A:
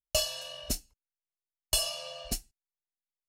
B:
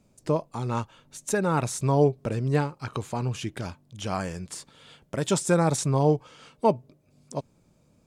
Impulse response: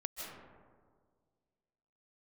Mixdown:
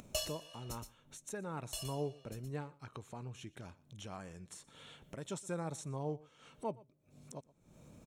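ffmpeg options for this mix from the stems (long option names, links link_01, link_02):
-filter_complex "[0:a]volume=-8.5dB,afade=type=out:start_time=1.44:duration=0.8:silence=0.446684,asplit=2[link_01][link_02];[link_02]volume=-13dB[link_03];[1:a]acompressor=mode=upward:threshold=-25dB:ratio=2.5,volume=-18dB,asplit=3[link_04][link_05][link_06];[link_05]volume=-22dB[link_07];[link_06]apad=whole_len=144766[link_08];[link_01][link_08]sidechaincompress=threshold=-49dB:ratio=8:attack=16:release=310[link_09];[link_03][link_07]amix=inputs=2:normalize=0,aecho=0:1:120:1[link_10];[link_09][link_04][link_10]amix=inputs=3:normalize=0,acompressor=mode=upward:threshold=-51dB:ratio=2.5,asuperstop=centerf=4800:order=4:qfactor=7.3"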